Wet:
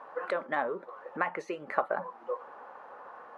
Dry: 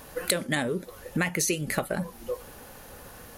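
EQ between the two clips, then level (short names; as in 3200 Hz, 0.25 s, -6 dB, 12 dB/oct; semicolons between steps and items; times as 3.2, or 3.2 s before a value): HPF 570 Hz 12 dB/oct; synth low-pass 1100 Hz, resonance Q 2.3; 0.0 dB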